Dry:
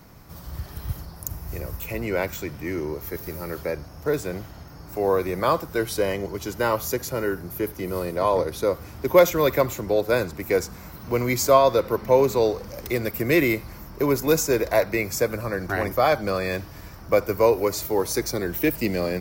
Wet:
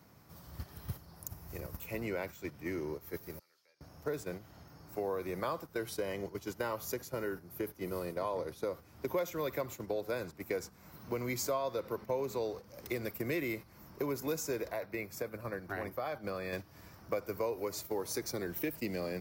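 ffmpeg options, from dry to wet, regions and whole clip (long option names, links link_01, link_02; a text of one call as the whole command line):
ffmpeg -i in.wav -filter_complex "[0:a]asettb=1/sr,asplit=3[link_01][link_02][link_03];[link_01]atrim=end=3.394[link_04];[link_02]atrim=start=3.39:end=3.81,asetpts=PTS-STARTPTS,afade=type=in:duration=0.004:curve=qsin,afade=type=out:start_time=0.416:duration=0.004:curve=qsin,agate=range=-11dB:threshold=-25dB:ratio=16:release=100:detection=peak,bandpass=frequency=4800:width_type=q:width=1.4,acompressor=threshold=-55dB:ratio=3:attack=3.2:release=140:knee=1:detection=peak[link_05];[link_03]atrim=start=3.806[link_06];[link_04][link_05]acrossfade=duration=0.004:curve1=hsin:curve2=qsin[link_07];[link_07][link_06]acrossfade=duration=0.004:curve1=qsin:curve2=hsin,asettb=1/sr,asplit=3[link_08][link_09][link_10];[link_08]atrim=end=14.684[link_11];[link_09]atrim=start=14.68:end=16.53,asetpts=PTS-STARTPTS,afade=type=in:duration=0.004:curve=qsin,afade=type=out:start_time=1.846:duration=0.004:curve=qsin,equalizer=frequency=6700:width_type=o:width=1.2:gain=-5.5,acompressor=threshold=-26dB:ratio=2.5:attack=3.2:release=140:knee=1:detection=peak[link_12];[link_10]atrim=start=16.526[link_13];[link_11][link_12]acrossfade=duration=0.004:curve1=hsin:curve2=qsin[link_14];[link_14][link_13]acrossfade=duration=0.004:curve1=qsin:curve2=hsin,agate=range=-11dB:threshold=-29dB:ratio=16:detection=peak,highpass=87,acompressor=threshold=-38dB:ratio=3" out.wav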